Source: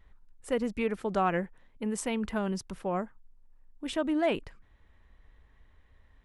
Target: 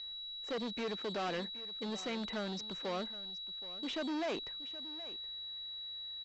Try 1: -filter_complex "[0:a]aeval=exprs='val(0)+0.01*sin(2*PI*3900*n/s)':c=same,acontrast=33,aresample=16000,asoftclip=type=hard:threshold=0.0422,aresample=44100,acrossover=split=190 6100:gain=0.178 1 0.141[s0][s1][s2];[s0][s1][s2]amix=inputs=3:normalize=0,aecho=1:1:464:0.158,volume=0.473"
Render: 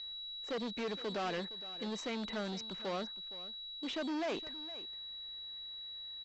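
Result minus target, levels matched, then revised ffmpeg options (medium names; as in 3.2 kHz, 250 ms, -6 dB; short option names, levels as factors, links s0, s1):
echo 308 ms early
-filter_complex "[0:a]aeval=exprs='val(0)+0.01*sin(2*PI*3900*n/s)':c=same,acontrast=33,aresample=16000,asoftclip=type=hard:threshold=0.0422,aresample=44100,acrossover=split=190 6100:gain=0.178 1 0.141[s0][s1][s2];[s0][s1][s2]amix=inputs=3:normalize=0,aecho=1:1:772:0.158,volume=0.473"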